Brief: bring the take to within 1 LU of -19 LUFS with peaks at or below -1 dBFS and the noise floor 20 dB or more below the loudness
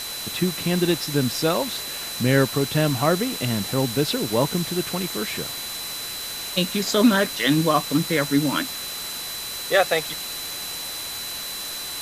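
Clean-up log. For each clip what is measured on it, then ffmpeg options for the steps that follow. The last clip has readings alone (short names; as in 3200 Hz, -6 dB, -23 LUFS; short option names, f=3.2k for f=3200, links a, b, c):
steady tone 4000 Hz; tone level -33 dBFS; noise floor -32 dBFS; noise floor target -43 dBFS; loudness -23.0 LUFS; peak -5.0 dBFS; loudness target -19.0 LUFS
-> -af "bandreject=f=4k:w=30"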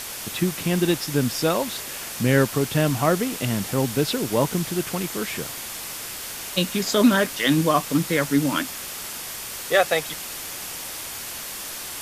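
steady tone none; noise floor -34 dBFS; noise floor target -44 dBFS
-> -af "afftdn=nr=10:nf=-34"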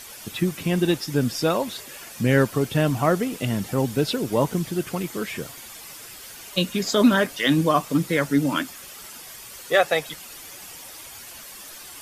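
noise floor -41 dBFS; noise floor target -43 dBFS
-> -af "afftdn=nr=6:nf=-41"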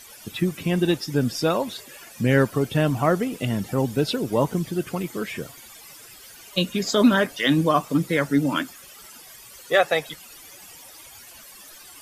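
noise floor -46 dBFS; loudness -23.0 LUFS; peak -5.5 dBFS; loudness target -19.0 LUFS
-> -af "volume=4dB"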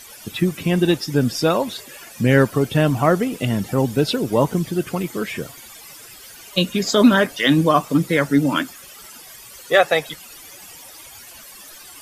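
loudness -19.0 LUFS; peak -1.5 dBFS; noise floor -42 dBFS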